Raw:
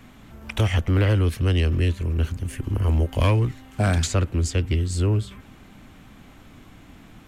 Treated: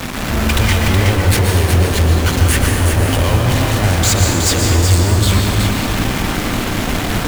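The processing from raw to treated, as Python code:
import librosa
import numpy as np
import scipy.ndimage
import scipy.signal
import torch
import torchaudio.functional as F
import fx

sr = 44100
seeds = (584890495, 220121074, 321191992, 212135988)

y = fx.over_compress(x, sr, threshold_db=-30.0, ratio=-1.0)
y = fx.fuzz(y, sr, gain_db=42.0, gate_db=-39.0)
y = fx.quant_companded(y, sr, bits=4)
y = y + 10.0 ** (-5.5 / 20.0) * np.pad(y, (int(370 * sr / 1000.0), 0))[:len(y)]
y = fx.rev_plate(y, sr, seeds[0], rt60_s=1.7, hf_ratio=0.75, predelay_ms=110, drr_db=1.5)
y = y * 10.0 ** (-1.0 / 20.0)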